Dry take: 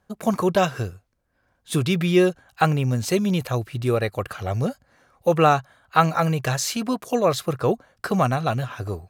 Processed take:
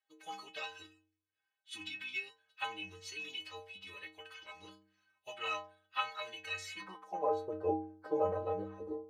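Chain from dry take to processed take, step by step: formant-preserving pitch shift -5.5 st; band-pass sweep 2.9 kHz -> 520 Hz, 6.45–7.40 s; inharmonic resonator 93 Hz, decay 0.8 s, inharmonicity 0.03; trim +9 dB

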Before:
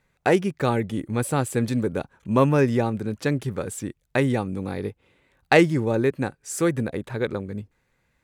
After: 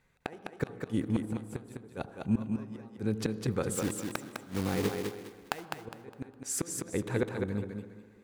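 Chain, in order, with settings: 3.75–5.67 s: block-companded coder 3-bit; band-stop 590 Hz, Q 12; inverted gate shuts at -16 dBFS, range -29 dB; thinning echo 205 ms, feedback 30%, high-pass 160 Hz, level -4 dB; on a send at -14.5 dB: reverberation RT60 2.2 s, pre-delay 64 ms; on the sum: trim -2 dB

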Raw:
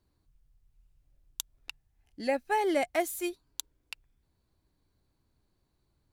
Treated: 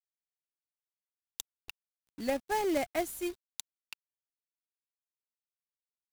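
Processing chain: bass shelf 62 Hz -4 dB; companded quantiser 4-bit; bass shelf 250 Hz +10 dB; trim -5 dB

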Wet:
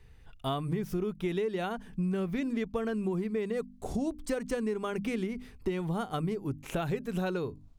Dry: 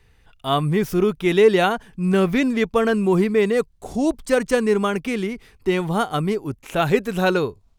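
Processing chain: bass shelf 340 Hz +8 dB; hum notches 50/100/150/200/250/300 Hz; compression 10:1, threshold -23 dBFS, peak gain reduction 17 dB; trim -5.5 dB

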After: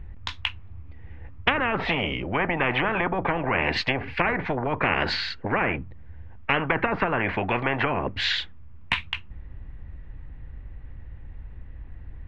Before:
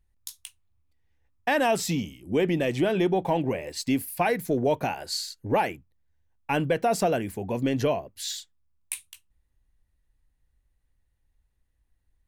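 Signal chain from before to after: low-pass that closes with the level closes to 780 Hz, closed at -20 dBFS; low-pass 2.5 kHz 24 dB/octave; bass shelf 290 Hz +9 dB; spectrum-flattening compressor 10:1; trim +3.5 dB

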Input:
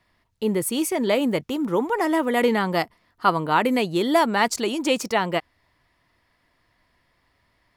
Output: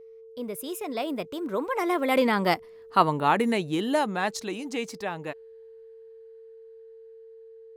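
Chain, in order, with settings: Doppler pass-by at 2.71 s, 41 m/s, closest 28 m; whistle 450 Hz -45 dBFS

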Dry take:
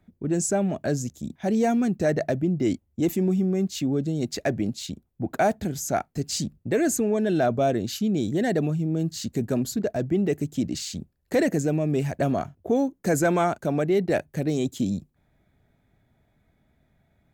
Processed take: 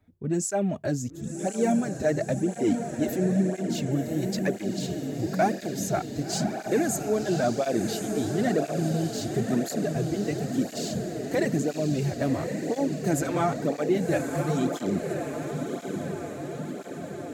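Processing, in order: echo that smears into a reverb 1113 ms, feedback 65%, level -6 dB; cancelling through-zero flanger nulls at 0.98 Hz, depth 6 ms

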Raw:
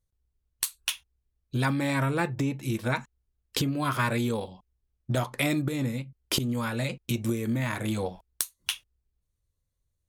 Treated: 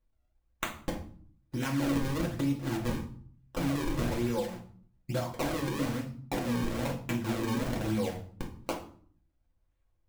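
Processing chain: 3.87–5.19 s: comb 5.8 ms, depth 70%; compression, threshold -30 dBFS, peak gain reduction 9.5 dB; decimation with a swept rate 37×, swing 160% 1.1 Hz; reverberation RT60 0.50 s, pre-delay 3 ms, DRR -1.5 dB; trim -2 dB

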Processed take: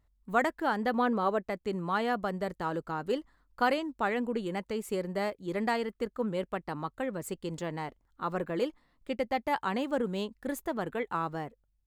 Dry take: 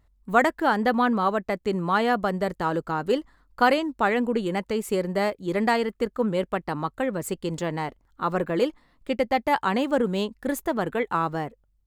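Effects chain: 0.93–1.44 s: peaking EQ 480 Hz +6 dB 1 oct; trim -7.5 dB

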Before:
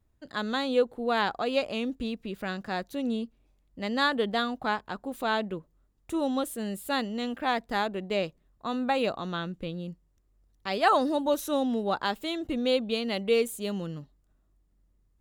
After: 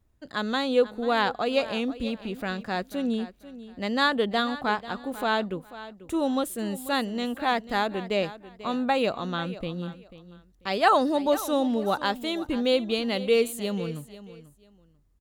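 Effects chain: feedback delay 491 ms, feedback 23%, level -15.5 dB; trim +2.5 dB

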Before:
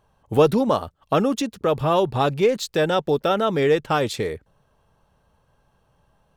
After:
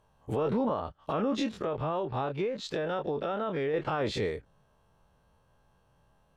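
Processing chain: every event in the spectrogram widened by 60 ms; low-pass that closes with the level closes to 2.2 kHz, closed at -13.5 dBFS; 1.47–3.74 s: compression, threshold -21 dBFS, peak gain reduction 9.5 dB; peak limiter -13.5 dBFS, peak gain reduction 11 dB; trim -7.5 dB

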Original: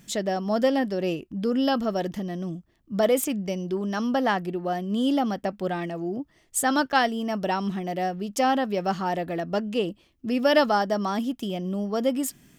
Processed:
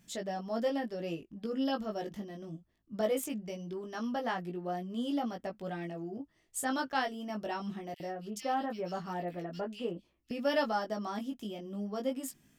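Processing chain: chorus 0.21 Hz, delay 17 ms, depth 2.1 ms; 7.94–10.31 s: bands offset in time highs, lows 60 ms, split 2.4 kHz; trim -7.5 dB

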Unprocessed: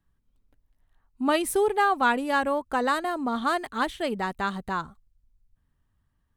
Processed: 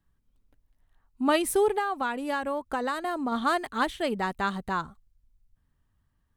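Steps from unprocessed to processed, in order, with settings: 1.78–3.32 s: compression, threshold -26 dBFS, peak gain reduction 9 dB

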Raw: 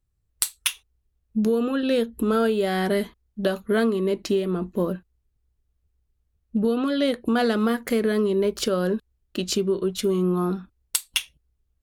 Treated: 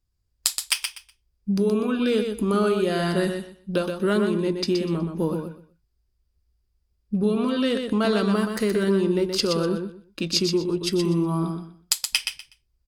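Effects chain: peaking EQ 5.3 kHz +13 dB 0.24 oct; on a send: feedback delay 113 ms, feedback 21%, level -6 dB; on the sum: speed mistake 48 kHz file played as 44.1 kHz; trim -1 dB

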